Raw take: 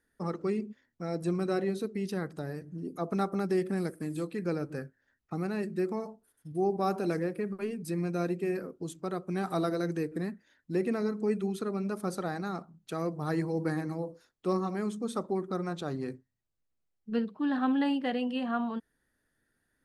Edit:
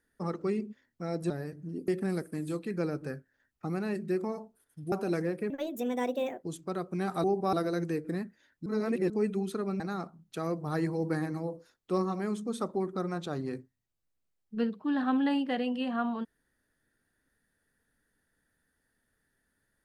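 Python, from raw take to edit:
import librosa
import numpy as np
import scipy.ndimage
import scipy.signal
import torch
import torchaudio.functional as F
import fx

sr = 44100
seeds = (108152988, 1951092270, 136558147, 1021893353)

y = fx.edit(x, sr, fx.cut(start_s=1.3, length_s=1.09),
    fx.cut(start_s=2.97, length_s=0.59),
    fx.move(start_s=6.6, length_s=0.29, to_s=9.6),
    fx.speed_span(start_s=7.47, length_s=1.32, speed=1.42),
    fx.reverse_span(start_s=10.73, length_s=0.44),
    fx.cut(start_s=11.87, length_s=0.48), tone=tone)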